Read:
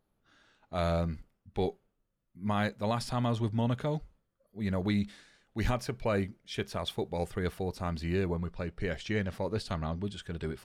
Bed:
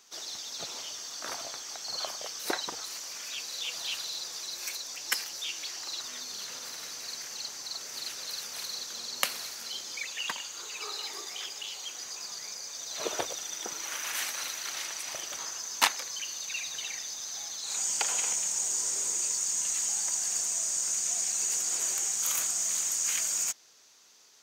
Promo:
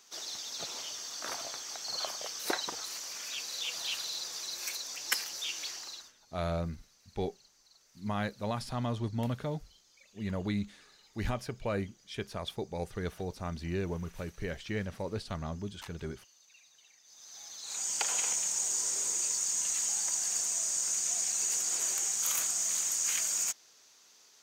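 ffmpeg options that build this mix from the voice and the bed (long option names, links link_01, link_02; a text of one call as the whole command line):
ffmpeg -i stem1.wav -i stem2.wav -filter_complex "[0:a]adelay=5600,volume=-3.5dB[link_01];[1:a]volume=22.5dB,afade=type=out:start_time=5.66:duration=0.47:silence=0.0630957,afade=type=in:start_time=17.03:duration=1.12:silence=0.0668344[link_02];[link_01][link_02]amix=inputs=2:normalize=0" out.wav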